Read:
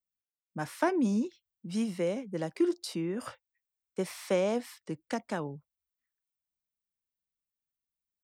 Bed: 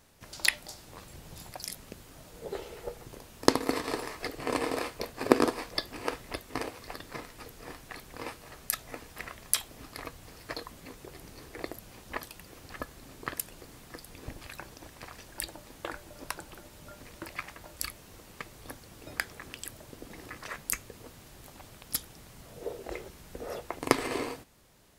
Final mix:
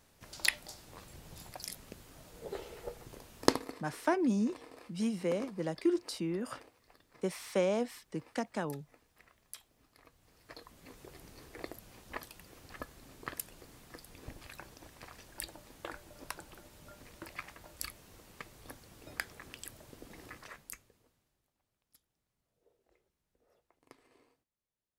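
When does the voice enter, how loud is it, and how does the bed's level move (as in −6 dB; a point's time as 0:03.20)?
3.25 s, −2.0 dB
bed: 0:03.51 −4 dB
0:03.79 −21.5 dB
0:09.98 −21.5 dB
0:10.99 −5.5 dB
0:20.32 −5.5 dB
0:21.53 −34.5 dB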